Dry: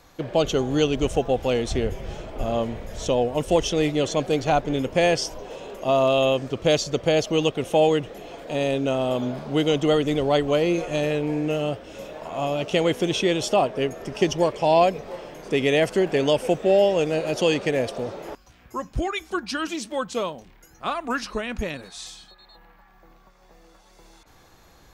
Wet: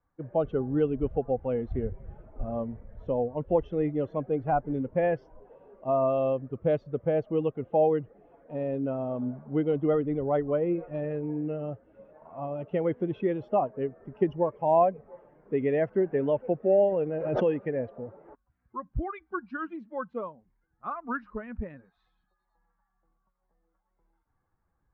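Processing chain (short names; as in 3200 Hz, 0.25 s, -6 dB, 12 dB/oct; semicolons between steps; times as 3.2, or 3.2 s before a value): per-bin expansion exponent 1.5; LPF 1600 Hz 24 dB/oct; 16.78–17.57 backwards sustainer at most 39 dB/s; gain -2.5 dB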